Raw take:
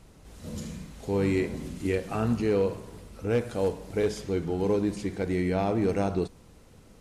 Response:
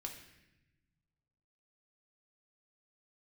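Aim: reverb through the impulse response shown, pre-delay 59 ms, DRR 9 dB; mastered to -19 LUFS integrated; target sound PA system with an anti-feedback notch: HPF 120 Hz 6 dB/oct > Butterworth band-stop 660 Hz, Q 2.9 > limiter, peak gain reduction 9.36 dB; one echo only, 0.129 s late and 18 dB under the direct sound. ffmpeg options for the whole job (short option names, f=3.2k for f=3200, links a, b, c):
-filter_complex "[0:a]aecho=1:1:129:0.126,asplit=2[a][b];[1:a]atrim=start_sample=2205,adelay=59[c];[b][c]afir=irnorm=-1:irlink=0,volume=-6.5dB[d];[a][d]amix=inputs=2:normalize=0,highpass=f=120:p=1,asuperstop=centerf=660:order=8:qfactor=2.9,volume=15dB,alimiter=limit=-9dB:level=0:latency=1"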